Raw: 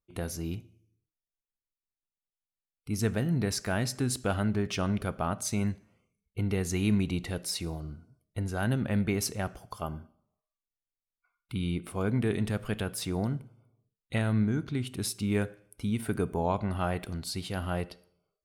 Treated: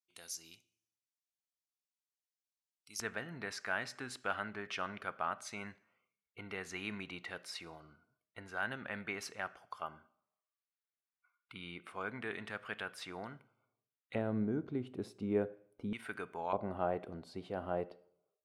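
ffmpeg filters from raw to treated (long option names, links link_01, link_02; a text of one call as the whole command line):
ffmpeg -i in.wav -af "asetnsamples=nb_out_samples=441:pad=0,asendcmd='3 bandpass f 1600;14.15 bandpass f 480;15.93 bandpass f 1800;16.53 bandpass f 550',bandpass=frequency=5800:width_type=q:width=1.2:csg=0" out.wav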